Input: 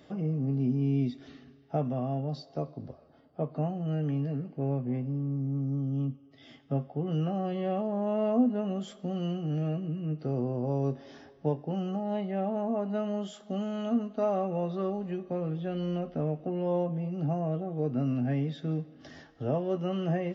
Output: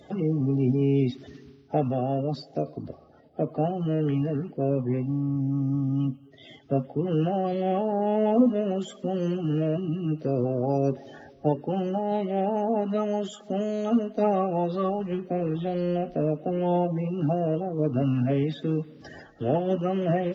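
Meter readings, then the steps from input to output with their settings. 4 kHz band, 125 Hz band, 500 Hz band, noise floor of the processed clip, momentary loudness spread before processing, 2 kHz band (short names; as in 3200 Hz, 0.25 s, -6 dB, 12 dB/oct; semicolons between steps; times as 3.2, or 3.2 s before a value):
+4.0 dB, +3.0 dB, +6.0 dB, -52 dBFS, 7 LU, +5.0 dB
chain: bin magnitudes rounded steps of 30 dB; gain +5.5 dB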